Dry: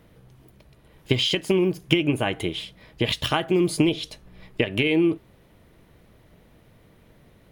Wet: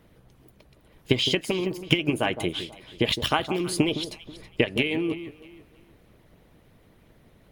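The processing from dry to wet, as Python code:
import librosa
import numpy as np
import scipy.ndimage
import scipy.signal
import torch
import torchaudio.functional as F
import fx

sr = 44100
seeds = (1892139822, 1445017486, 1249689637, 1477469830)

y = fx.hpss(x, sr, part='harmonic', gain_db=-9)
y = fx.echo_alternate(y, sr, ms=162, hz=1100.0, feedback_pct=51, wet_db=-10.5)
y = y * 10.0 ** (1.0 / 20.0)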